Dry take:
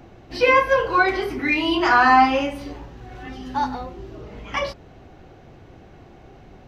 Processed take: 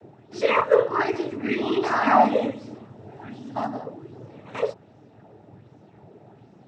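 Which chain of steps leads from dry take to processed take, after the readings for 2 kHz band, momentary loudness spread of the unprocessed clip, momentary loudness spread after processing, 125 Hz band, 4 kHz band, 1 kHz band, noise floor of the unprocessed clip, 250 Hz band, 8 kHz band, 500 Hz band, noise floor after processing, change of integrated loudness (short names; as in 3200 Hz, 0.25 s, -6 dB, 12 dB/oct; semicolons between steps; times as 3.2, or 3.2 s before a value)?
-9.5 dB, 23 LU, 23 LU, -2.5 dB, -9.0 dB, -5.0 dB, -47 dBFS, -2.5 dB, n/a, 0.0 dB, -53 dBFS, -4.0 dB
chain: noise vocoder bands 12; tilt shelf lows +5.5 dB, about 930 Hz; LFO bell 1.3 Hz 420–6300 Hz +7 dB; gain -6.5 dB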